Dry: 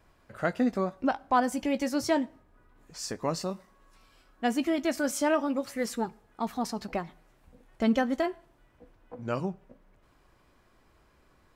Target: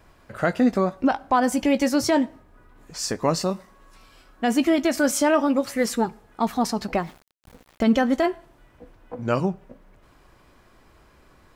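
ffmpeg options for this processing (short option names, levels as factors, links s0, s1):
-filter_complex "[0:a]asettb=1/sr,asplit=3[s0][s1][s2];[s0]atrim=end=7.024[s3];[s1]atrim=start=7.02:end=7.92,asetpts=PTS-STARTPTS,afade=t=in:d=0.004:c=qsin,afade=t=out:st=0.896:d=0.004:c=qsin,aeval=exprs='val(0)*gte(abs(val(0)),0.002)':c=same[s4];[s2]atrim=start=7.916[s5];[s3][s4]acrossfade=d=0.004:c1=hsin:c2=qsin[s6];[s6][s5]acrossfade=d=0.004:c1=qsin:c2=hsin,alimiter=level_in=7.5:limit=0.891:release=50:level=0:latency=1,volume=0.355"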